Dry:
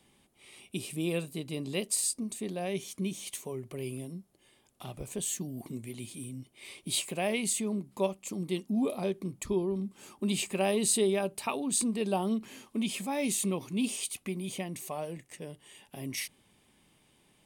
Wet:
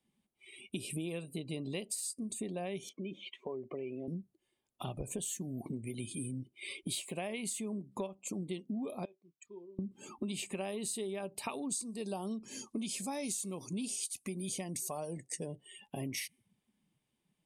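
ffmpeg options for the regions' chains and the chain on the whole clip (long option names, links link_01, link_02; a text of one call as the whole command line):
ffmpeg -i in.wav -filter_complex "[0:a]asettb=1/sr,asplit=3[link_01][link_02][link_03];[link_01]atrim=end=2.894[link_04];[link_02]atrim=start=2.89:end=4.08,asetpts=PTS-STARTPTS,afade=type=in:duration=0.004:curve=qsin,afade=type=out:start_time=1.186:duration=0.004:curve=qsin,acompressor=threshold=-37dB:ratio=3:attack=3.2:release=140:knee=1:detection=peak,highpass=280,lowpass=2700[link_05];[link_03]atrim=start=4.076[link_06];[link_04][link_05]acrossfade=duration=0.004:curve1=hsin:curve2=qsin[link_07];[link_07][link_06]acrossfade=duration=0.004:curve1=qsin:curve2=hsin,asettb=1/sr,asplit=3[link_08][link_09][link_10];[link_08]atrim=end=9.054[link_11];[link_09]atrim=start=9.05:end=9.79,asetpts=PTS-STARTPTS,afade=type=in:duration=0.004:curve=qsin,afade=type=out:start_time=0.736:duration=0.004:curve=qsin,aderivative,adynamicsmooth=sensitivity=1.5:basefreq=2600,asplit=2[link_12][link_13];[link_13]adelay=29,volume=-11.5dB[link_14];[link_12][link_14]amix=inputs=2:normalize=0,atrim=end_sample=32634[link_15];[link_10]atrim=start=9.786[link_16];[link_11][link_15]acrossfade=duration=0.004:curve1=hsin:curve2=qsin[link_17];[link_17][link_16]acrossfade=duration=0.004:curve1=qsin:curve2=hsin,asettb=1/sr,asplit=3[link_18][link_19][link_20];[link_18]atrim=end=11.504[link_21];[link_19]atrim=start=11.5:end=15.46,asetpts=PTS-STARTPTS,afade=type=in:duration=0.004:curve=qsin,afade=type=out:start_time=3.956:duration=0.004:curve=qsin,lowpass=12000,highshelf=frequency=3900:width_type=q:width=1.5:gain=7[link_22];[link_20]atrim=start=15.456[link_23];[link_21][link_22]acrossfade=duration=0.004:curve1=hsin:curve2=qsin[link_24];[link_24][link_23]acrossfade=duration=0.004:curve1=qsin:curve2=hsin,afftdn=noise_reduction=24:noise_floor=-51,acompressor=threshold=-41dB:ratio=12,volume=5.5dB" out.wav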